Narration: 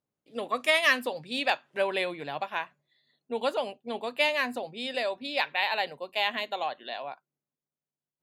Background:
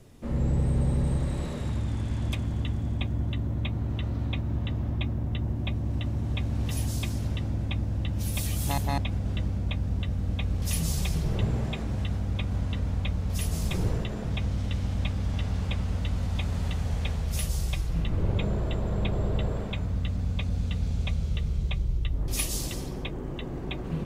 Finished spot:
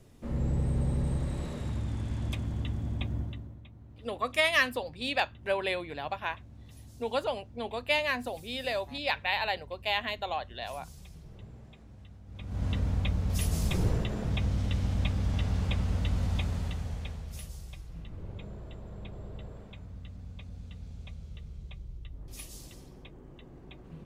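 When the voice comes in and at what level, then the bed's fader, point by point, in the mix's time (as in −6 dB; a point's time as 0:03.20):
3.70 s, −2.0 dB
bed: 0:03.18 −4 dB
0:03.65 −21.5 dB
0:12.24 −21.5 dB
0:12.66 −0.5 dB
0:16.32 −0.5 dB
0:17.63 −15.5 dB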